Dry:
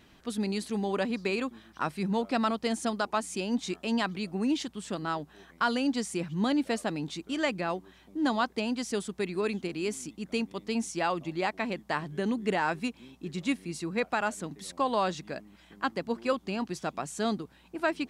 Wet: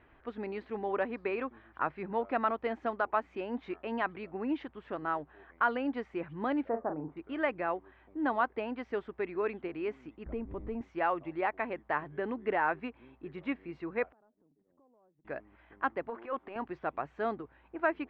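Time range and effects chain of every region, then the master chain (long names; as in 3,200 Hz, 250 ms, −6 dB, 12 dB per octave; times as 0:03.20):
0:06.69–0:07.17: low-pass filter 1,200 Hz 24 dB per octave + double-tracking delay 39 ms −8 dB
0:10.26–0:10.81: mu-law and A-law mismatch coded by mu + spectral tilt −4.5 dB per octave + downward compressor 2 to 1, threshold −34 dBFS
0:14.12–0:15.25: four-pole ladder band-pass 230 Hz, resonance 25% + downward compressor 8 to 1, threshold −60 dBFS
0:16.07–0:16.56: high-pass filter 480 Hz 6 dB per octave + transient designer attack −11 dB, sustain +7 dB + high-frequency loss of the air 210 metres
whole clip: low-pass filter 2,100 Hz 24 dB per octave; parametric band 190 Hz −14 dB 0.87 octaves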